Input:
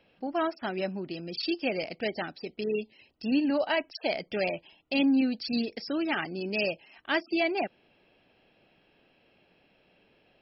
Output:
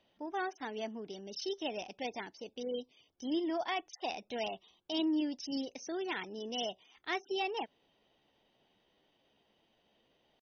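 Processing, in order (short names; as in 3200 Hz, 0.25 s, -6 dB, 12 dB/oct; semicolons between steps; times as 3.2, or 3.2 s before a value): pitch shift +2.5 st; gain -8 dB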